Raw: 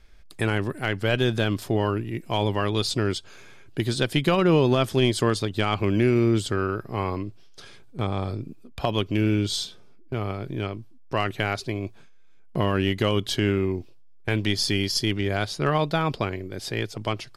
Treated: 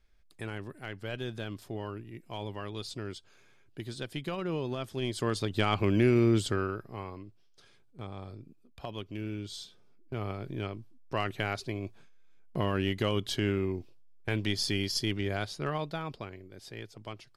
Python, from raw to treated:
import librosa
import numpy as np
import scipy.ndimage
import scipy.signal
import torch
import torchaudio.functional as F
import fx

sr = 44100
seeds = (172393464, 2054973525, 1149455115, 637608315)

y = fx.gain(x, sr, db=fx.line((4.92, -14.5), (5.54, -3.5), (6.49, -3.5), (7.12, -15.0), (9.55, -15.0), (10.23, -6.5), (15.27, -6.5), (16.27, -15.0)))